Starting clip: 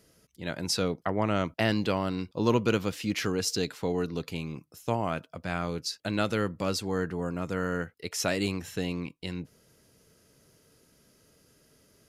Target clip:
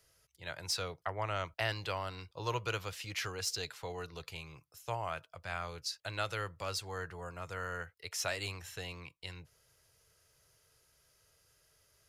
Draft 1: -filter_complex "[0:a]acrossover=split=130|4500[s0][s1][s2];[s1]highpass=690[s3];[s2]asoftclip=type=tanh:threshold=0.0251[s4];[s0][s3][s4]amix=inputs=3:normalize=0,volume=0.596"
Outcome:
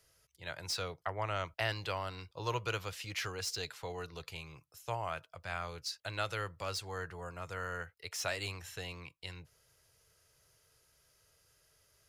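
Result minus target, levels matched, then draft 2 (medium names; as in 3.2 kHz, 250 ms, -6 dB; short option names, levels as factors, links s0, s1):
saturation: distortion +10 dB
-filter_complex "[0:a]acrossover=split=130|4500[s0][s1][s2];[s1]highpass=690[s3];[s2]asoftclip=type=tanh:threshold=0.0668[s4];[s0][s3][s4]amix=inputs=3:normalize=0,volume=0.596"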